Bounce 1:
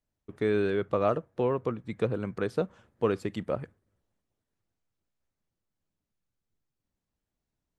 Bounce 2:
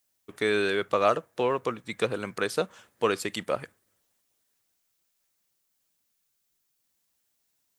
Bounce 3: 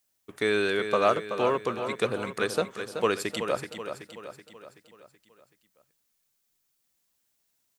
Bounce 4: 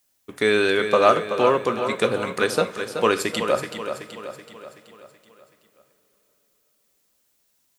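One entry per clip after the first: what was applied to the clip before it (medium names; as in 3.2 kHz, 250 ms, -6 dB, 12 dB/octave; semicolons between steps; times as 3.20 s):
tilt EQ +4 dB/octave; trim +5.5 dB
feedback delay 378 ms, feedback 51%, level -8.5 dB
two-slope reverb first 0.28 s, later 4.8 s, from -22 dB, DRR 9 dB; trim +6 dB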